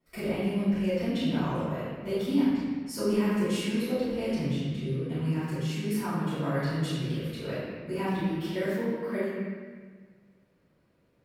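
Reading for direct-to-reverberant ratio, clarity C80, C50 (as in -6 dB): -17.5 dB, -0.5 dB, -3.5 dB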